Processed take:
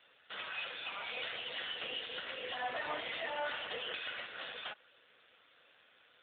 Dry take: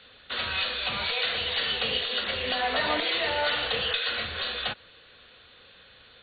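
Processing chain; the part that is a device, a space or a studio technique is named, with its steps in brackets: telephone (BPF 380–3500 Hz; soft clip -22.5 dBFS, distortion -18 dB; gain -6 dB; AMR-NB 7.4 kbps 8000 Hz)

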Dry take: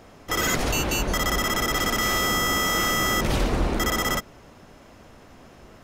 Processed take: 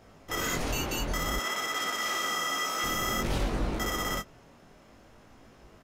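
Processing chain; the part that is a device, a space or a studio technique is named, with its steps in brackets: double-tracked vocal (doubler 18 ms -13.5 dB; chorus 0.55 Hz, delay 18.5 ms, depth 7 ms); 1.39–2.84 weighting filter A; gain -4 dB

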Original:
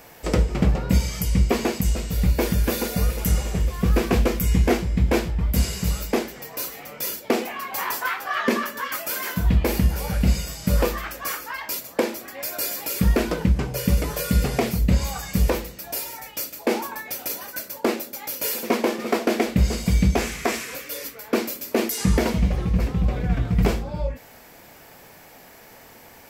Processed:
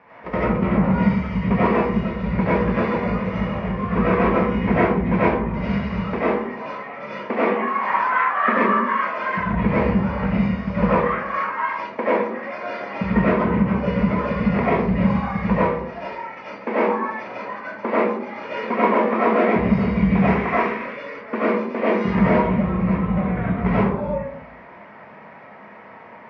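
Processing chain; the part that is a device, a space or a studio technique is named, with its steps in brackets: bass cabinet (speaker cabinet 83–2200 Hz, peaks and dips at 120 Hz -6 dB, 210 Hz +6 dB, 310 Hz -6 dB, 720 Hz -3 dB, 1000 Hz +10 dB, 2100 Hz +4 dB); resonant high shelf 7700 Hz -11.5 dB, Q 3; digital reverb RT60 0.73 s, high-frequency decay 0.35×, pre-delay 50 ms, DRR -10 dB; gain -5.5 dB

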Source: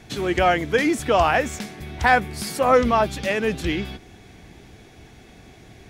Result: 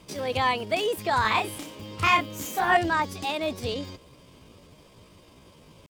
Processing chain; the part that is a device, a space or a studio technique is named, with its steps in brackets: chipmunk voice (pitch shift +6 st); 1.21–2.77 doubler 32 ms -2.5 dB; gain -6 dB

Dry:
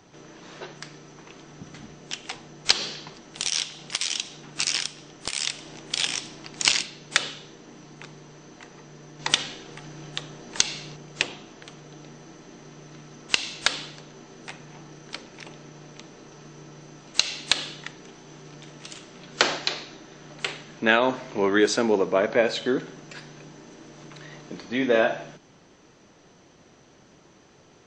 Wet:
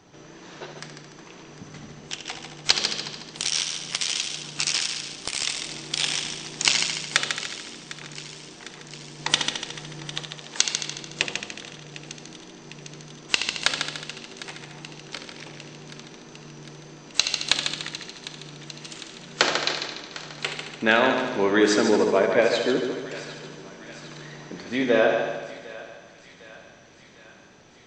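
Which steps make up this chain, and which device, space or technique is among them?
10.24–10.94 HPF 690 Hz -> 190 Hz 6 dB/oct; multi-head tape echo (multi-head echo 73 ms, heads first and second, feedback 55%, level -9 dB; wow and flutter 19 cents); thinning echo 0.753 s, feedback 69%, high-pass 820 Hz, level -16 dB

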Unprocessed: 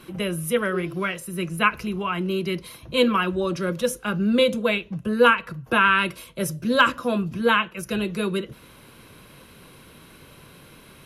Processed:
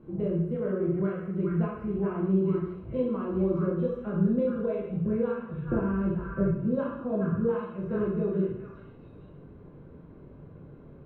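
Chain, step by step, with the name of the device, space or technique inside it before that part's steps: 5.67–6.5 tilt -3.5 dB/oct; television next door (compressor 4:1, threshold -23 dBFS, peak gain reduction 10.5 dB; LPF 480 Hz 12 dB/oct; reverb RT60 0.75 s, pre-delay 16 ms, DRR -3.5 dB); delay with a stepping band-pass 0.423 s, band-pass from 1600 Hz, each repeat 1.4 oct, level 0 dB; gain -2.5 dB

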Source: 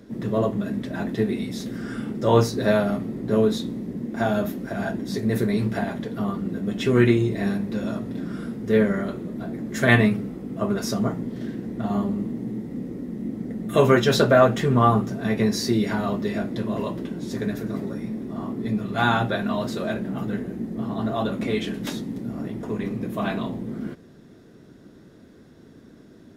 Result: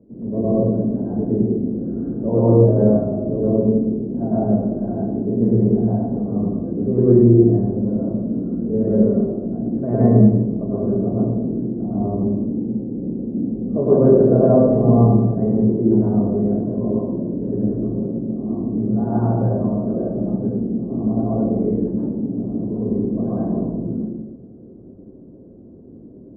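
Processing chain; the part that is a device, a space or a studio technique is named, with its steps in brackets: next room (LPF 630 Hz 24 dB/oct; reverb RT60 1.1 s, pre-delay 98 ms, DRR -9.5 dB); gain -4 dB

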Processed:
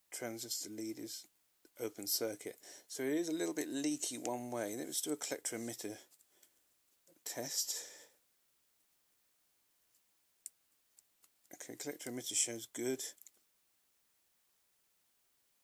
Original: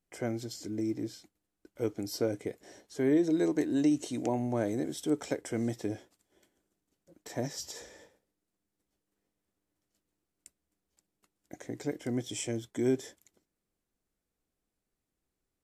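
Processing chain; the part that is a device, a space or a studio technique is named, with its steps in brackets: turntable without a phono preamp (RIAA curve recording; white noise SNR 34 dB); gain -5.5 dB

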